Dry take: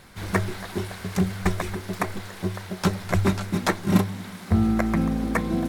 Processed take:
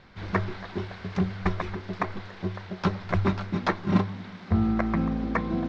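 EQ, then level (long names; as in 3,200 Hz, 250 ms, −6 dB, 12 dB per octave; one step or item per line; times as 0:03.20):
low-pass filter 5,500 Hz 24 dB per octave
dynamic equaliser 1,100 Hz, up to +4 dB, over −40 dBFS, Q 2.4
high-frequency loss of the air 100 metres
−3.0 dB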